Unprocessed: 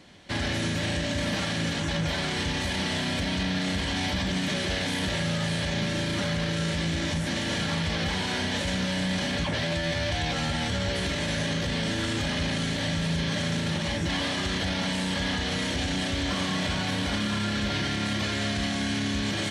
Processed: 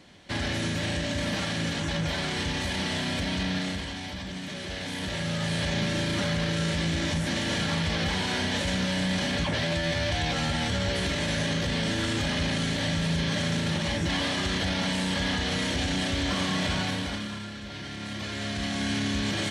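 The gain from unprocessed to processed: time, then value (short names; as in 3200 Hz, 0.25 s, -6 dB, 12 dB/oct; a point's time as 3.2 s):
3.57 s -1 dB
4.01 s -8.5 dB
4.52 s -8.5 dB
5.63 s +0.5 dB
16.81 s +0.5 dB
17.6 s -12 dB
18.9 s 0 dB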